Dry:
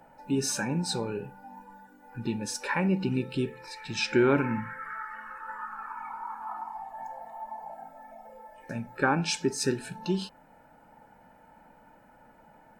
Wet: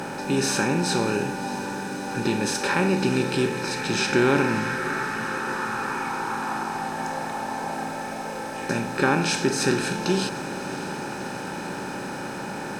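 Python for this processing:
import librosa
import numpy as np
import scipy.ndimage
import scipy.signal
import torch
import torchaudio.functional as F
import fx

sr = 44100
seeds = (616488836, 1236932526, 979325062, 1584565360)

y = fx.bin_compress(x, sr, power=0.4)
y = fx.echo_diffused(y, sr, ms=615, feedback_pct=73, wet_db=-14.5)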